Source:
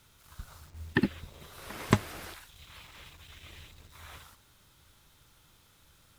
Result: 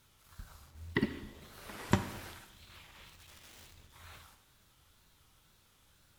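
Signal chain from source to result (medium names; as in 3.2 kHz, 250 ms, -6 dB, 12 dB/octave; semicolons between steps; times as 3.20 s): 3.08–3.76 s: integer overflow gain 45 dB; wow and flutter 140 cents; two-slope reverb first 0.93 s, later 2.7 s, DRR 8.5 dB; trim -5 dB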